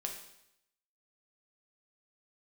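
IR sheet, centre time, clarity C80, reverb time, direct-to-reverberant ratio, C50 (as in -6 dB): 26 ms, 9.0 dB, 0.80 s, 1.5 dB, 6.0 dB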